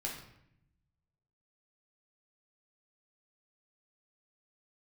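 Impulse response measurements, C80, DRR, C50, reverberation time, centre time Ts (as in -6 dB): 8.0 dB, -3.0 dB, 4.5 dB, 0.75 s, 36 ms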